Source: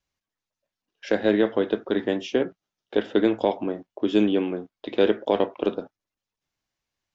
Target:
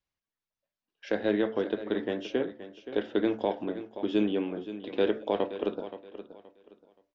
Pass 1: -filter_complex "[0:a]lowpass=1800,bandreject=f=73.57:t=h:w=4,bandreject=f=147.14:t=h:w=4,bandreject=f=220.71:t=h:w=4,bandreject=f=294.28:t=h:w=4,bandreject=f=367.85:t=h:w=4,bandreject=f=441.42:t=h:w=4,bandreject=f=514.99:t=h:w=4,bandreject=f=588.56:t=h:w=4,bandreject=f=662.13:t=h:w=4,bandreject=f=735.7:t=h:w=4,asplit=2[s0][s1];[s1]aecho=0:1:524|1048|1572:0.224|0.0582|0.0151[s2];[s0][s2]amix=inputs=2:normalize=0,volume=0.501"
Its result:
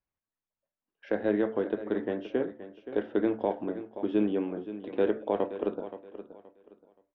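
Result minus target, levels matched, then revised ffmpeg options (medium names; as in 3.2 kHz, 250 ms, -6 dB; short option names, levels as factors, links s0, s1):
4 kHz band -10.5 dB
-filter_complex "[0:a]lowpass=5200,bandreject=f=73.57:t=h:w=4,bandreject=f=147.14:t=h:w=4,bandreject=f=220.71:t=h:w=4,bandreject=f=294.28:t=h:w=4,bandreject=f=367.85:t=h:w=4,bandreject=f=441.42:t=h:w=4,bandreject=f=514.99:t=h:w=4,bandreject=f=588.56:t=h:w=4,bandreject=f=662.13:t=h:w=4,bandreject=f=735.7:t=h:w=4,asplit=2[s0][s1];[s1]aecho=0:1:524|1048|1572:0.224|0.0582|0.0151[s2];[s0][s2]amix=inputs=2:normalize=0,volume=0.501"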